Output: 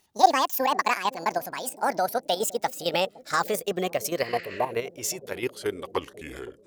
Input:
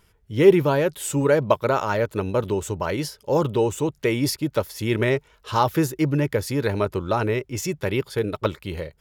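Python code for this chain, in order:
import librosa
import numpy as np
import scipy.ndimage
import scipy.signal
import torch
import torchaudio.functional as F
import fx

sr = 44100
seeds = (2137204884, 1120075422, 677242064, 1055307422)

y = fx.speed_glide(x, sr, from_pct=198, to_pct=72)
y = fx.spec_repair(y, sr, seeds[0], start_s=4.27, length_s=0.43, low_hz=1200.0, high_hz=7900.0, source='both')
y = fx.level_steps(y, sr, step_db=11)
y = fx.bass_treble(y, sr, bass_db=-13, treble_db=6)
y = fx.echo_bbd(y, sr, ms=513, stages=2048, feedback_pct=72, wet_db=-17.0)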